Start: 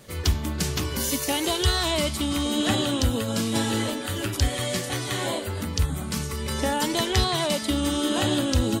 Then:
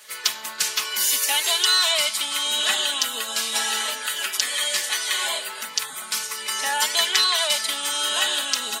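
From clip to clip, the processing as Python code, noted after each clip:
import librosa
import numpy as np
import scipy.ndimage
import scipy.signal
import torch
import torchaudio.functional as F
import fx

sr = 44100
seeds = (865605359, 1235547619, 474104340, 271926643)

y = scipy.signal.sosfilt(scipy.signal.butter(2, 1300.0, 'highpass', fs=sr, output='sos'), x)
y = y + 0.77 * np.pad(y, (int(4.7 * sr / 1000.0), 0))[:len(y)]
y = y * 10.0 ** (5.5 / 20.0)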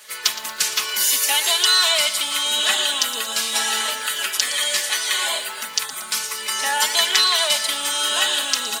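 y = fx.echo_crushed(x, sr, ms=116, feedback_pct=55, bits=6, wet_db=-13.5)
y = y * 10.0 ** (2.5 / 20.0)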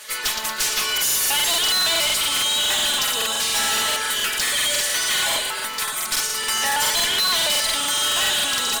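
y = fx.tube_stage(x, sr, drive_db=25.0, bias=0.4)
y = fx.buffer_crackle(y, sr, first_s=0.93, period_s=0.14, block=2048, kind='repeat')
y = y * 10.0 ** (7.0 / 20.0)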